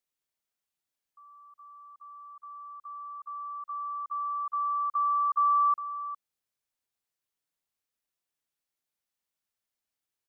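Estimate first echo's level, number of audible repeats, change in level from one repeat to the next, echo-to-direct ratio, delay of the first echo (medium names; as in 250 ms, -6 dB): -12.5 dB, 1, no regular repeats, -12.5 dB, 408 ms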